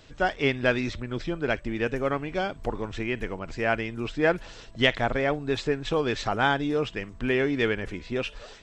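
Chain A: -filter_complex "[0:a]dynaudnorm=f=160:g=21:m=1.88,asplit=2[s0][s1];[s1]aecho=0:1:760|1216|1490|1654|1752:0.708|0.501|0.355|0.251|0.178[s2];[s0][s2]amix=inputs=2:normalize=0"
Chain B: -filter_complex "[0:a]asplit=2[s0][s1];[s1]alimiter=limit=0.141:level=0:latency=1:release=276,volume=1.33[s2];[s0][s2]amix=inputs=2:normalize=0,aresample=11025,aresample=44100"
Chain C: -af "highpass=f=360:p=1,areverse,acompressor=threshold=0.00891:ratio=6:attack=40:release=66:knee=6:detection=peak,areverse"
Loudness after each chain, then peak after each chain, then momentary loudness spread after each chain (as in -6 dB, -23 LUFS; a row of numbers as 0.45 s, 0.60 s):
-21.5 LUFS, -21.5 LUFS, -39.0 LUFS; -2.0 dBFS, -3.5 dBFS, -19.0 dBFS; 6 LU, 7 LU, 4 LU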